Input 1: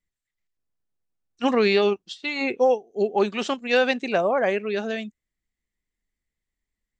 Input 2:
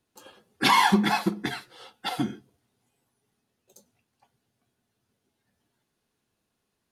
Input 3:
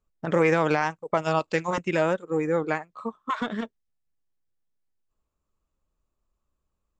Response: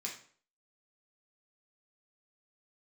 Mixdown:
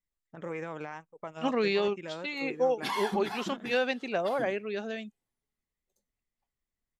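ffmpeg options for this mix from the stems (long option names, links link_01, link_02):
-filter_complex "[0:a]volume=-8dB[link_01];[1:a]adelay=2200,volume=-13.5dB,afade=type=out:start_time=5.04:duration=0.79:silence=0.298538[link_02];[2:a]equalizer=frequency=4600:width_type=o:width=0.31:gain=-12,adelay=100,volume=-16.5dB[link_03];[link_01][link_02][link_03]amix=inputs=3:normalize=0"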